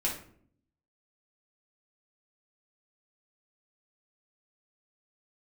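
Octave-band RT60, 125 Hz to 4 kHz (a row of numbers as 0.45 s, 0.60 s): 0.95 s, 0.90 s, 0.65 s, 0.50 s, 0.45 s, 0.35 s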